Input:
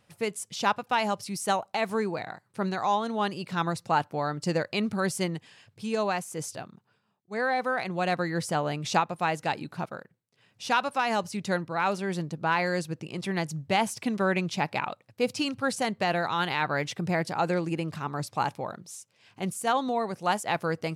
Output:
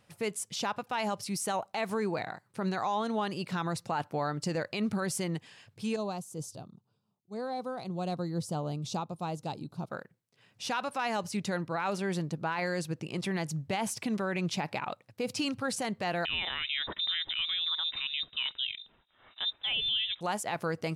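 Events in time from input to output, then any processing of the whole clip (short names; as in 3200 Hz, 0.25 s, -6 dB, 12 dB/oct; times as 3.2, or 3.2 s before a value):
5.96–9.9 EQ curve 120 Hz 0 dB, 1200 Hz -11 dB, 1800 Hz -25 dB, 3700 Hz -7 dB
16.25–20.21 inverted band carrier 3800 Hz
whole clip: limiter -22.5 dBFS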